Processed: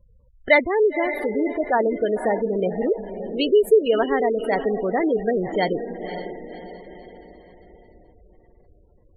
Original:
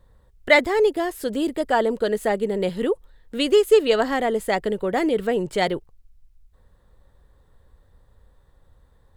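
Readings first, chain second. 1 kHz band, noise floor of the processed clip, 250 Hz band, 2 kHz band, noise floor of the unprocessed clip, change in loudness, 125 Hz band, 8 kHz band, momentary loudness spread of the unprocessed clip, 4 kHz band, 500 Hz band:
0.0 dB, -55 dBFS, +0.5 dB, -0.5 dB, -58 dBFS, 0.0 dB, +0.5 dB, no reading, 9 LU, -4.5 dB, +0.5 dB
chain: echo that smears into a reverb 538 ms, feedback 46%, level -9 dB; spectral gate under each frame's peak -20 dB strong

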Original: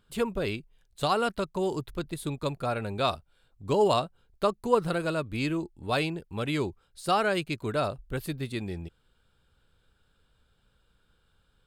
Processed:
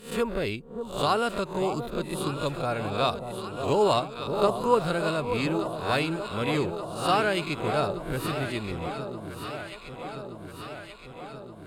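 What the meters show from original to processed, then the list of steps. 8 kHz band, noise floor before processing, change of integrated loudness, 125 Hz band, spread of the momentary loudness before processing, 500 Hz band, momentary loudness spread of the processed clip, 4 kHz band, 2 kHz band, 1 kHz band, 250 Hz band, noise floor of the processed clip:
+3.0 dB, -69 dBFS, +1.5 dB, +1.5 dB, 11 LU, +2.5 dB, 15 LU, +3.0 dB, +3.0 dB, +3.0 dB, +2.0 dB, -44 dBFS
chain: reverse spectral sustain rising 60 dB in 0.41 s; echo whose repeats swap between lows and highs 587 ms, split 1 kHz, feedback 81%, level -7.5 dB

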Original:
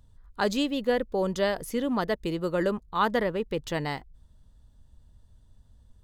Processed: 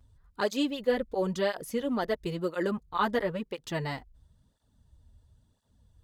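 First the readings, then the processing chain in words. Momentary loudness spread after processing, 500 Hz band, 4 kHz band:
6 LU, -2.5 dB, -3.0 dB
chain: cancelling through-zero flanger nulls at 0.98 Hz, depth 6.7 ms

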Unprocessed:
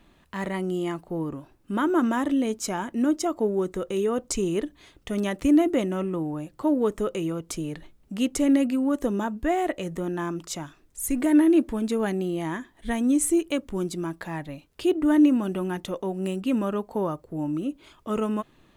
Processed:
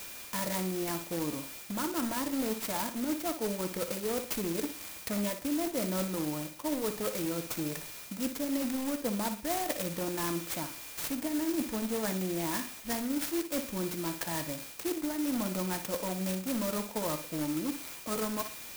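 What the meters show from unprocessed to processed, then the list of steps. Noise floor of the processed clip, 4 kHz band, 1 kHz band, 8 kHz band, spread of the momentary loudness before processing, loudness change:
-46 dBFS, +0.5 dB, -6.0 dB, -1.5 dB, 13 LU, -7.5 dB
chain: bass shelf 250 Hz -11 dB; comb of notches 390 Hz; whistle 2.4 kHz -49 dBFS; transient shaper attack +5 dB, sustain 0 dB; in parallel at -8 dB: integer overflow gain 26.5 dB; on the sum: FFT filter 1.5 kHz 0 dB, 2.4 kHz +6 dB, 4.8 kHz -9 dB, 9.1 kHz -2 dB; reverse; compression 6:1, threshold -30 dBFS, peak gain reduction 13 dB; reverse; flutter echo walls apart 10.1 m, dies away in 0.36 s; sampling jitter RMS 0.11 ms

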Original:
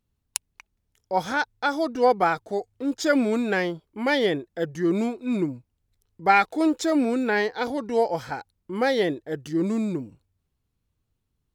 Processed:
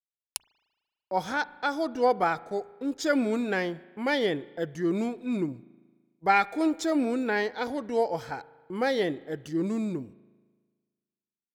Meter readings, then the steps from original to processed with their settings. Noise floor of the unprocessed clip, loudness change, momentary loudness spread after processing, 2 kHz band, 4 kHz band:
-77 dBFS, -4.0 dB, 13 LU, -4.0 dB, -4.0 dB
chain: gate -40 dBFS, range -38 dB; spring tank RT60 1.5 s, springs 37 ms, chirp 35 ms, DRR 19.5 dB; trim -4 dB

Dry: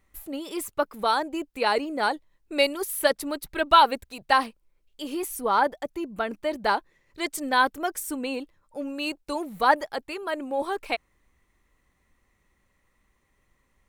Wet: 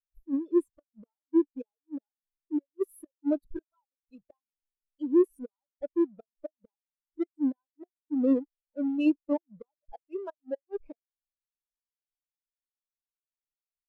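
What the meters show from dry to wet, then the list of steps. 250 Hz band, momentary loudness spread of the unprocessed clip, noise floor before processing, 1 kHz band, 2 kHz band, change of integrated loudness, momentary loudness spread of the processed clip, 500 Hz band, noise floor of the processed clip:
+4.5 dB, 12 LU, -70 dBFS, -27.5 dB, -26.5 dB, -4.0 dB, 18 LU, -5.0 dB, under -85 dBFS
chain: square wave that keeps the level; inverted gate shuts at -19 dBFS, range -34 dB; spectral contrast expander 2.5:1; trim +1.5 dB

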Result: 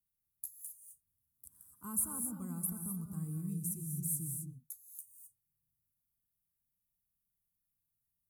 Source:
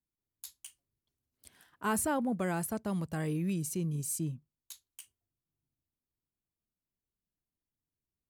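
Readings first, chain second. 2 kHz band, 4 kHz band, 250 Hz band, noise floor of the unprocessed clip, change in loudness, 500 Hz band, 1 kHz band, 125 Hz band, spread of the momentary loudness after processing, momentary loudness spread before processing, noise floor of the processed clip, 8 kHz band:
under -20 dB, under -20 dB, -8.0 dB, under -85 dBFS, -4.5 dB, -22.5 dB, -17.5 dB, -5.0 dB, 20 LU, 20 LU, under -85 dBFS, +1.0 dB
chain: FFT filter 170 Hz 0 dB, 620 Hz -24 dB, 1.2 kHz -7 dB, 1.7 kHz -26 dB, 2.8 kHz -26 dB, 4 kHz -21 dB, 11 kHz +11 dB; in parallel at -1 dB: compression, threshold -53 dBFS, peak gain reduction 27.5 dB; on the sum: gated-style reverb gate 280 ms rising, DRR 4.5 dB; trim -7 dB

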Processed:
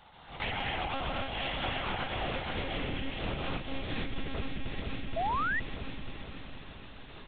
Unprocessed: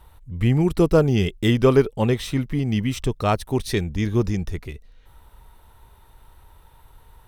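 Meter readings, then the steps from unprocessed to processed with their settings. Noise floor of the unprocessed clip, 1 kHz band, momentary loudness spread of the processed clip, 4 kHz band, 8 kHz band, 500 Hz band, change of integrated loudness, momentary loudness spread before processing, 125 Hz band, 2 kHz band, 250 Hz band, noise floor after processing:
-52 dBFS, -3.5 dB, 14 LU, -3.0 dB, under -40 dB, -17.5 dB, -14.0 dB, 9 LU, -18.0 dB, -1.0 dB, -17.5 dB, -50 dBFS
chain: spectral contrast reduction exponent 0.41; peaking EQ 370 Hz -2 dB 0.38 oct; gated-style reverb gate 280 ms rising, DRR -6.5 dB; high-pass sweep 700 Hz -> 110 Hz, 2.12–3.73 s; monotone LPC vocoder at 8 kHz 270 Hz; peaking EQ 1.2 kHz -3.5 dB 2.5 oct; on a send: feedback delay 473 ms, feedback 54%, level -8 dB; on the sum: compression 6:1, threshold -26 dBFS, peak gain reduction 17.5 dB; painted sound rise, 5.16–5.60 s, 630–2000 Hz -25 dBFS; trim -6 dB

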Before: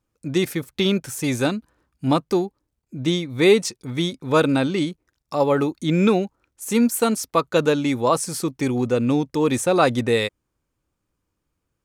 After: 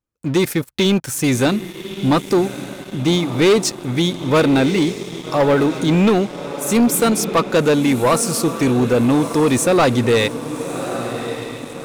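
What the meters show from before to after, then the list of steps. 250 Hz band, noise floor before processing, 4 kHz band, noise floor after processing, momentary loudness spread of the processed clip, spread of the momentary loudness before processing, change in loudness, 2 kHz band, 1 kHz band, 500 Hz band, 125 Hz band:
+5.0 dB, -78 dBFS, +5.0 dB, -35 dBFS, 10 LU, 9 LU, +4.0 dB, +4.5 dB, +4.0 dB, +4.0 dB, +5.5 dB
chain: echo that smears into a reverb 1202 ms, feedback 48%, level -13 dB; waveshaping leveller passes 3; trim -4 dB

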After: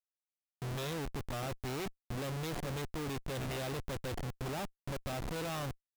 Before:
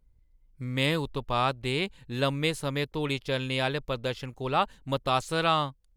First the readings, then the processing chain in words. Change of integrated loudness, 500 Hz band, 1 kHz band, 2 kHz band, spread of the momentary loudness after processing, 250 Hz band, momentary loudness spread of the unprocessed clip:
-10.5 dB, -10.5 dB, -14.0 dB, -12.5 dB, 3 LU, -9.0 dB, 6 LU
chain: touch-sensitive flanger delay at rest 7 ms, full sweep at -26 dBFS; whistle 720 Hz -46 dBFS; Schmitt trigger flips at -37 dBFS; trim -6 dB

